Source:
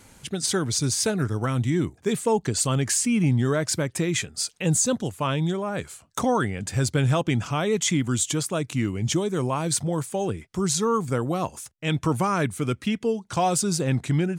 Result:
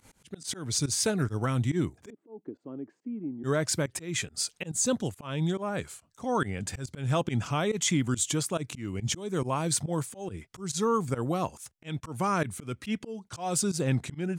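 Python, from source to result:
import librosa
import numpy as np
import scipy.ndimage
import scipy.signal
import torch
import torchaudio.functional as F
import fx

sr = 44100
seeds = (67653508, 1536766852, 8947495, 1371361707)

y = fx.volume_shaper(x, sr, bpm=140, per_beat=1, depth_db=-21, release_ms=93.0, shape='fast start')
y = fx.auto_swell(y, sr, attack_ms=217.0)
y = fx.ladder_bandpass(y, sr, hz=340.0, resonance_pct=55, at=(2.1, 3.44))
y = y * librosa.db_to_amplitude(-3.0)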